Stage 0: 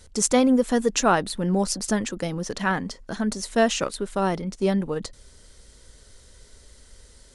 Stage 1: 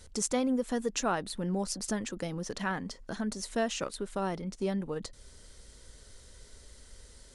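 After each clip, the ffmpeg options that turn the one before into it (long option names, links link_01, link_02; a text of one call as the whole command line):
ffmpeg -i in.wav -af "acompressor=threshold=-38dB:ratio=1.5,volume=-2.5dB" out.wav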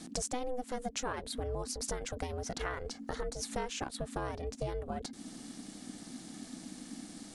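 ffmpeg -i in.wav -af "aeval=exprs='val(0)*sin(2*PI*250*n/s)':channel_layout=same,acompressor=threshold=-42dB:ratio=4,volume=7.5dB" out.wav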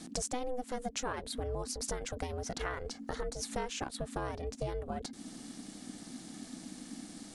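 ffmpeg -i in.wav -af anull out.wav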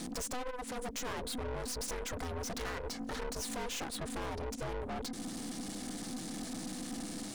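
ffmpeg -i in.wav -af "aeval=exprs='(tanh(224*val(0)+0.4)-tanh(0.4))/224':channel_layout=same,volume=10.5dB" out.wav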